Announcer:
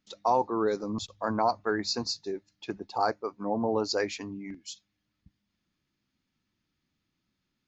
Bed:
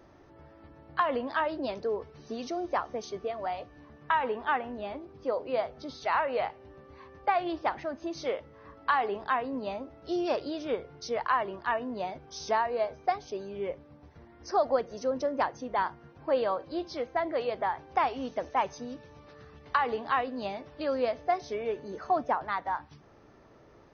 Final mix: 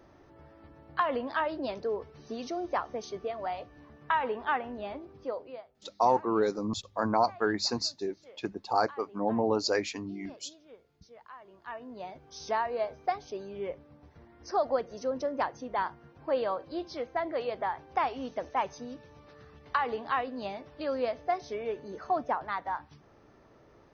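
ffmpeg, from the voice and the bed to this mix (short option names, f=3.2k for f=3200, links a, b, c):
-filter_complex "[0:a]adelay=5750,volume=0.5dB[a];[1:a]volume=19dB,afade=t=out:st=5.11:d=0.53:silence=0.0891251,afade=t=in:st=11.41:d=1.23:silence=0.1[b];[a][b]amix=inputs=2:normalize=0"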